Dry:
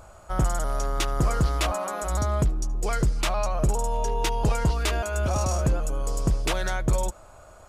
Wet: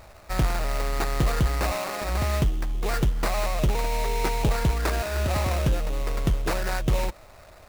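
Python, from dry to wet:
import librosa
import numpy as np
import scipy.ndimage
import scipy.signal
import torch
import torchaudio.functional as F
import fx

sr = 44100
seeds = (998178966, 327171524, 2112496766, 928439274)

y = fx.sample_hold(x, sr, seeds[0], rate_hz=3200.0, jitter_pct=20)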